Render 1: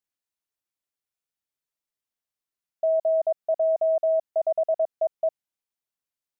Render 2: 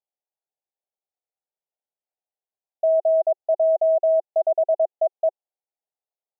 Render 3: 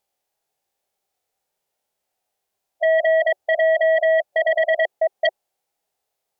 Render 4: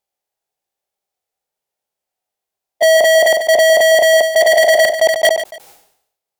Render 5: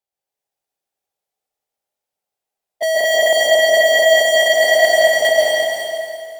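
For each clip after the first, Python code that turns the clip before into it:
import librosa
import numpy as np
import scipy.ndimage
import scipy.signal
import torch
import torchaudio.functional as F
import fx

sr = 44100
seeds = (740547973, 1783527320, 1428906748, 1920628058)

y1 = scipy.signal.sosfilt(scipy.signal.cheby1(3, 1.0, [370.0, 810.0], 'bandpass', fs=sr, output='sos'), x)
y1 = fx.tilt_eq(y1, sr, slope=6.0)
y1 = y1 * librosa.db_to_amplitude(8.5)
y2 = fx.hpss(y1, sr, part='percussive', gain_db=-17)
y2 = fx.over_compress(y2, sr, threshold_db=-24.0, ratio=-1.0)
y2 = fx.fold_sine(y2, sr, drive_db=11, ceiling_db=-14.0)
y3 = fx.leveller(y2, sr, passes=5)
y3 = fx.echo_feedback(y3, sr, ms=145, feedback_pct=17, wet_db=-11)
y3 = fx.sustainer(y3, sr, db_per_s=82.0)
y3 = y3 * librosa.db_to_amplitude(5.5)
y4 = y3 + 10.0 ** (-11.0 / 20.0) * np.pad(y3, (int(336 * sr / 1000.0), 0))[:len(y3)]
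y4 = fx.rev_plate(y4, sr, seeds[0], rt60_s=2.3, hf_ratio=0.95, predelay_ms=120, drr_db=-5.0)
y4 = y4 * librosa.db_to_amplitude(-8.0)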